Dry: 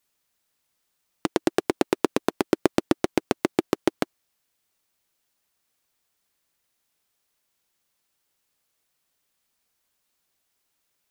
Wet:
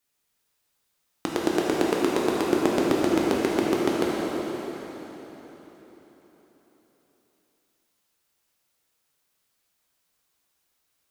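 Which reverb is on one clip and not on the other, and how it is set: plate-style reverb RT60 4.3 s, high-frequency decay 0.85×, DRR -4.5 dB; gain -4 dB

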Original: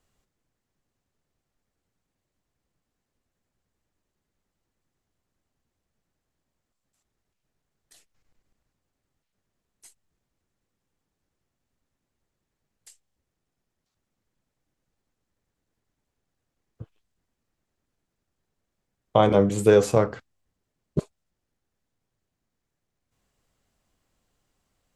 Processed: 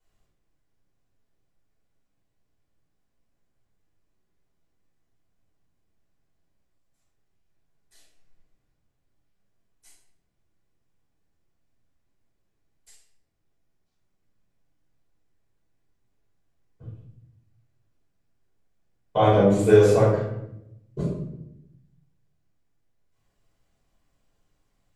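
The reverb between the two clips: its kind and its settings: shoebox room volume 230 m³, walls mixed, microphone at 4.9 m; gain -13.5 dB

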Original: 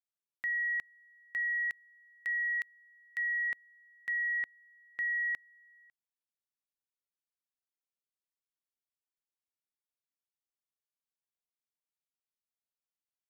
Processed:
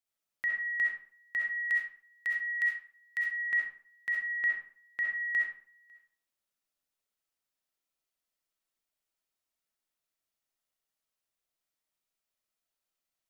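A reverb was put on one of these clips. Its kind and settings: digital reverb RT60 0.49 s, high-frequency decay 0.7×, pre-delay 25 ms, DRR -2 dB; gain +3 dB

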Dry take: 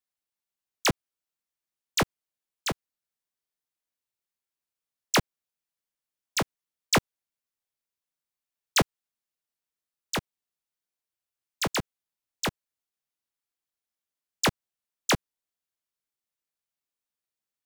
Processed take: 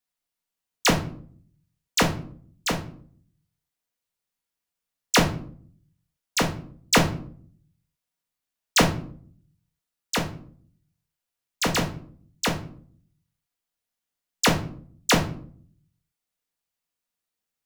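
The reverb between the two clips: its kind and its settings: shoebox room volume 560 m³, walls furnished, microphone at 1.8 m; gain +2.5 dB

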